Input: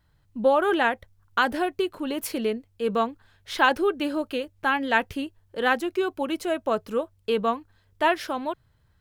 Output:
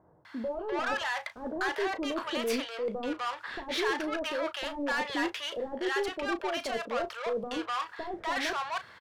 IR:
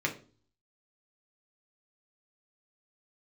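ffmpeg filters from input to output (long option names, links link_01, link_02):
-filter_complex "[0:a]highpass=frequency=520:poles=1,asplit=2[link_01][link_02];[link_02]volume=25dB,asoftclip=hard,volume=-25dB,volume=-5dB[link_03];[link_01][link_03]amix=inputs=2:normalize=0,acontrast=69,alimiter=limit=-13dB:level=0:latency=1:release=66,areverse,acompressor=threshold=-33dB:ratio=20,areverse,aemphasis=mode=reproduction:type=75fm,asplit=2[link_04][link_05];[link_05]highpass=frequency=720:poles=1,volume=22dB,asoftclip=type=tanh:threshold=-23dB[link_06];[link_04][link_06]amix=inputs=2:normalize=0,lowpass=frequency=5100:poles=1,volume=-6dB,asetrate=46722,aresample=44100,atempo=0.943874,asplit=2[link_07][link_08];[link_08]adelay=35,volume=-12dB[link_09];[link_07][link_09]amix=inputs=2:normalize=0,acrossover=split=710[link_10][link_11];[link_11]adelay=250[link_12];[link_10][link_12]amix=inputs=2:normalize=0"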